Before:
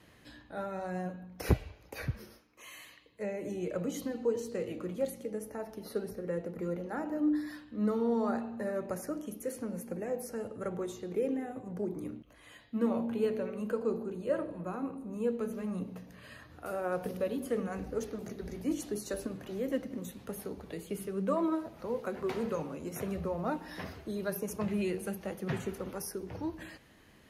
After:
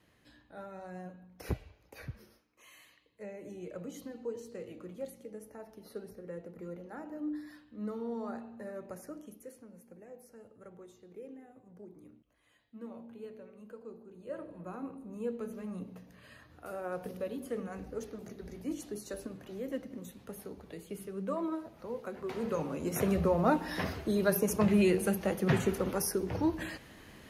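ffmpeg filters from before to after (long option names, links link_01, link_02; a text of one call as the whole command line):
ffmpeg -i in.wav -af "volume=14.5dB,afade=type=out:start_time=9.22:duration=0.42:silence=0.421697,afade=type=in:start_time=14.06:duration=0.7:silence=0.281838,afade=type=in:start_time=22.3:duration=0.75:silence=0.266073" out.wav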